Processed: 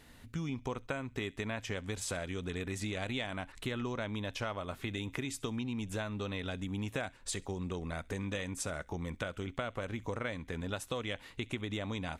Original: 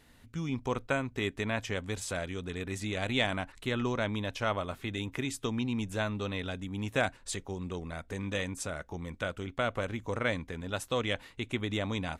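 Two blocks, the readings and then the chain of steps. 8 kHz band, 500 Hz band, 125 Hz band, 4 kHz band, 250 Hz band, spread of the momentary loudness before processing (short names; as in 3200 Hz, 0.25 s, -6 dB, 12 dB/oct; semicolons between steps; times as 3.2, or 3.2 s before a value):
-1.0 dB, -5.0 dB, -3.0 dB, -4.5 dB, -3.5 dB, 7 LU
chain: compressor, threshold -37 dBFS, peak gain reduction 13.5 dB; thin delay 67 ms, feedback 36%, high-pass 2000 Hz, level -22 dB; gain +3 dB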